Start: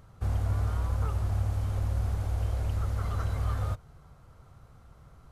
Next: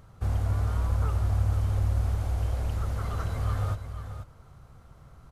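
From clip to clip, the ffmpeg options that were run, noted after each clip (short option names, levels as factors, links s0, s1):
-af "aecho=1:1:484:0.335,volume=1.19"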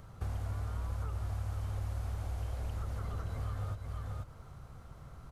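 -filter_complex "[0:a]acrossover=split=610|1400[s0][s1][s2];[s0]acompressor=threshold=0.0141:ratio=4[s3];[s1]acompressor=threshold=0.00158:ratio=4[s4];[s2]acompressor=threshold=0.00112:ratio=4[s5];[s3][s4][s5]amix=inputs=3:normalize=0,volume=1.12"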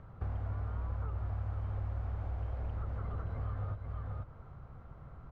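-af "lowpass=1800"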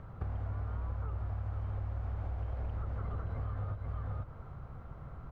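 -af "acompressor=threshold=0.0141:ratio=6,volume=1.58"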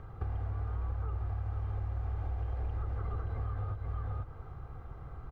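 -af "aecho=1:1:2.5:0.46"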